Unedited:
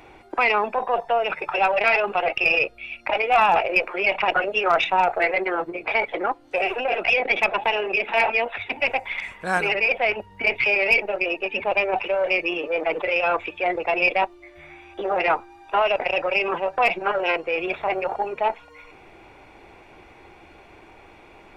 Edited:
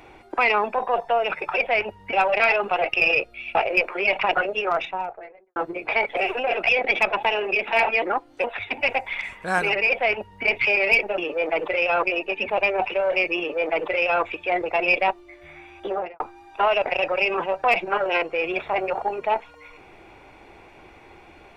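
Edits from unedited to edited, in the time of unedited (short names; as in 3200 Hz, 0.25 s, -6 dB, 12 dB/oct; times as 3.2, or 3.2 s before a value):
2.99–3.54 cut
4.24–5.55 studio fade out
6.16–6.58 move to 8.43
9.88–10.44 copy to 1.57
12.52–13.37 copy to 11.17
15–15.34 studio fade out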